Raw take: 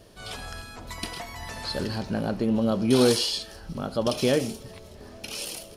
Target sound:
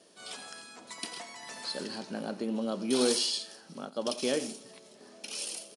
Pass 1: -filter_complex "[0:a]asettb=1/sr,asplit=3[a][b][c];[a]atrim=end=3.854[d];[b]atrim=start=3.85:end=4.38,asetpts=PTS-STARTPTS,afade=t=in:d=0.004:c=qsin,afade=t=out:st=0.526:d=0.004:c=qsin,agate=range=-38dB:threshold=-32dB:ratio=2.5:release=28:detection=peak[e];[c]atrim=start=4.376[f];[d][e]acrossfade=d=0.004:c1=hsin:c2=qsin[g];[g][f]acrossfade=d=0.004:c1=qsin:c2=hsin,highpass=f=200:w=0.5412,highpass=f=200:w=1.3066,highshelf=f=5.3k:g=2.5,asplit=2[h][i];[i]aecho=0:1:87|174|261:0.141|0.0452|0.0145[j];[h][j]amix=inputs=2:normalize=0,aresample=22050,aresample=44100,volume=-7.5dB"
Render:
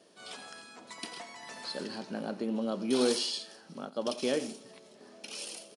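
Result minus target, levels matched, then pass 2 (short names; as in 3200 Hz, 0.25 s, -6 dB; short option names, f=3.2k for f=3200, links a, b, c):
8000 Hz band -4.0 dB
-filter_complex "[0:a]asettb=1/sr,asplit=3[a][b][c];[a]atrim=end=3.854[d];[b]atrim=start=3.85:end=4.38,asetpts=PTS-STARTPTS,afade=t=in:d=0.004:c=qsin,afade=t=out:st=0.526:d=0.004:c=qsin,agate=range=-38dB:threshold=-32dB:ratio=2.5:release=28:detection=peak[e];[c]atrim=start=4.376[f];[d][e]acrossfade=d=0.004:c1=hsin:c2=qsin[g];[g][f]acrossfade=d=0.004:c1=qsin:c2=hsin,highpass=f=200:w=0.5412,highpass=f=200:w=1.3066,highshelf=f=5.3k:g=10,asplit=2[h][i];[i]aecho=0:1:87|174|261:0.141|0.0452|0.0145[j];[h][j]amix=inputs=2:normalize=0,aresample=22050,aresample=44100,volume=-7.5dB"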